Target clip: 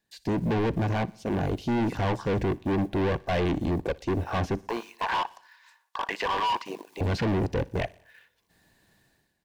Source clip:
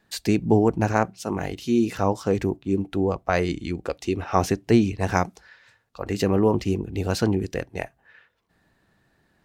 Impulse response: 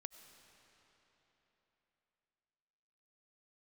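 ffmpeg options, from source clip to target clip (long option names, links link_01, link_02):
-filter_complex "[0:a]dynaudnorm=framelen=110:gausssize=7:maxgain=15.5dB,acrusher=bits=6:mode=log:mix=0:aa=0.000001,asettb=1/sr,asplit=3[link_01][link_02][link_03];[link_01]atrim=end=4.624[link_04];[link_02]atrim=start=4.62:end=7.01,asetpts=PTS-STARTPTS,afade=type=in:duration=0.004:curve=qsin,afade=type=out:start_time=2.386:duration=0.004:curve=qsin,highpass=frequency=1000:width_type=q:width=6.2[link_05];[link_03]atrim=start=7.006[link_06];[link_04][link_05]acrossfade=duration=0.004:curve1=hsin:curve2=qsin[link_07];[link_07][link_06]acrossfade=duration=0.004:curve1=qsin:curve2=hsin,afwtdn=0.0562,highshelf=frequency=3100:gain=11,asoftclip=type=hard:threshold=-23.5dB,bandreject=frequency=1300:width=5.2,aecho=1:1:60|120|180|240:0.0631|0.036|0.0205|0.0117,acrossover=split=4300[link_08][link_09];[link_09]acompressor=threshold=-56dB:ratio=4:attack=1:release=60[link_10];[link_08][link_10]amix=inputs=2:normalize=0"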